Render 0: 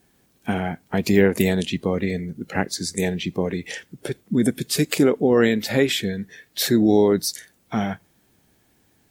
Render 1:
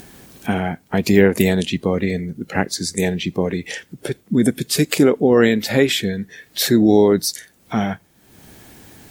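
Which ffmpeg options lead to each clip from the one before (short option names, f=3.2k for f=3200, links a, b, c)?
-af "acompressor=mode=upward:threshold=-33dB:ratio=2.5,volume=3.5dB"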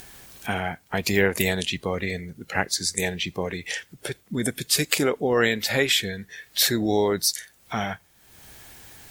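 -af "equalizer=f=240:w=0.55:g=-12.5"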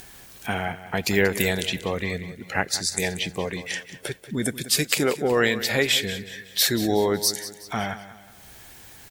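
-af "aecho=1:1:185|370|555|740:0.2|0.0838|0.0352|0.0148"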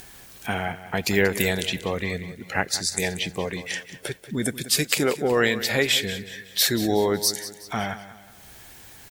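-af "acrusher=bits=9:mix=0:aa=0.000001"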